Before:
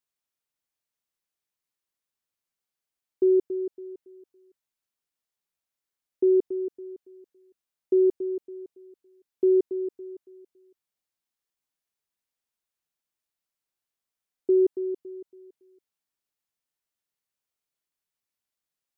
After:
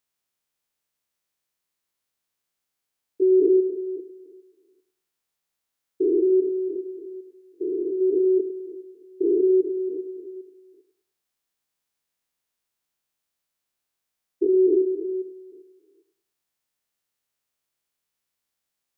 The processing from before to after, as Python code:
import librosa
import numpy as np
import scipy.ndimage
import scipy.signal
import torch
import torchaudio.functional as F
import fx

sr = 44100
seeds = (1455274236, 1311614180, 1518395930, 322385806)

y = fx.spec_steps(x, sr, hold_ms=400)
y = fx.echo_thinned(y, sr, ms=102, feedback_pct=44, hz=420.0, wet_db=-9)
y = y * librosa.db_to_amplitude(7.0)